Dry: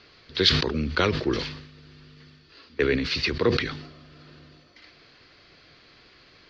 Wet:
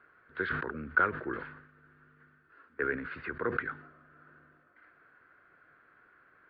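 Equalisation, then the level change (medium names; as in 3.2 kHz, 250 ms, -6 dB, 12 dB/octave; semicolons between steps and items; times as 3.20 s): four-pole ladder low-pass 1.6 kHz, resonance 75%; distance through air 75 m; bass shelf 120 Hz -10 dB; +1.0 dB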